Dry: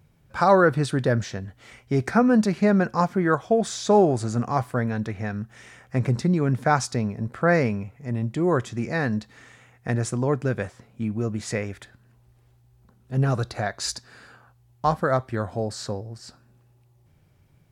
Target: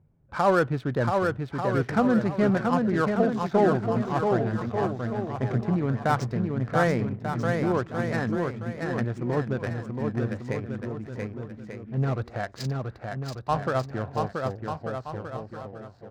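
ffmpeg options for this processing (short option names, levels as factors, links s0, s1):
-af "atempo=1.1,adynamicsmooth=sensitivity=3.5:basefreq=1000,aecho=1:1:680|1190|1572|1859|2075:0.631|0.398|0.251|0.158|0.1,volume=0.631"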